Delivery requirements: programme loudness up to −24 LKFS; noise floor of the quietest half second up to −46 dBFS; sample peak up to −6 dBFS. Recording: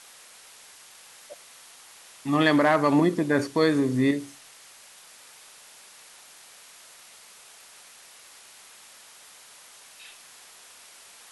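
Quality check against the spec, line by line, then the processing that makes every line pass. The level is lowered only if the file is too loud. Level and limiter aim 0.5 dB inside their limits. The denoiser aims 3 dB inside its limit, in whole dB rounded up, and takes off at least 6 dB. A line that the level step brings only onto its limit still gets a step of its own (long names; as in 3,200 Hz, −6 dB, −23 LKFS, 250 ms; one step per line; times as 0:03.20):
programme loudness −23.0 LKFS: out of spec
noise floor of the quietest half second −50 dBFS: in spec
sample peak −8.0 dBFS: in spec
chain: level −1.5 dB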